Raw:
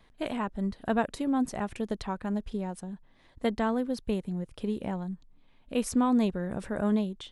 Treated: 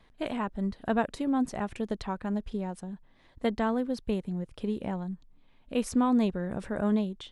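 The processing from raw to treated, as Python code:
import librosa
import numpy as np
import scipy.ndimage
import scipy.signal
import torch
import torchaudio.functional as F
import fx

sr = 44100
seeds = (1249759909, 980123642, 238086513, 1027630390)

y = fx.high_shelf(x, sr, hz=9800.0, db=-8.5)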